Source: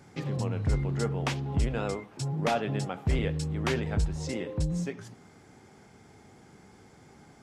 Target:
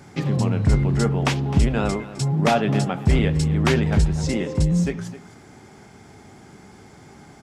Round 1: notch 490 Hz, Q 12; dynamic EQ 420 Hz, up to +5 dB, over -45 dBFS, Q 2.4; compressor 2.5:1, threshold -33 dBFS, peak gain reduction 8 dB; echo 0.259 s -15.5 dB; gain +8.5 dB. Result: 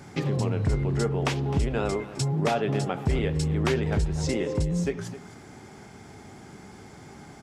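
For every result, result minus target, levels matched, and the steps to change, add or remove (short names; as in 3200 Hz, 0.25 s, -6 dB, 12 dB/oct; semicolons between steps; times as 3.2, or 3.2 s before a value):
compressor: peak gain reduction +8 dB; 500 Hz band +3.5 dB
remove: compressor 2.5:1, threshold -33 dBFS, peak gain reduction 8 dB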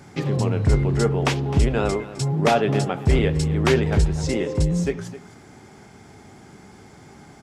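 500 Hz band +3.5 dB
change: dynamic EQ 200 Hz, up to +5 dB, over -45 dBFS, Q 2.4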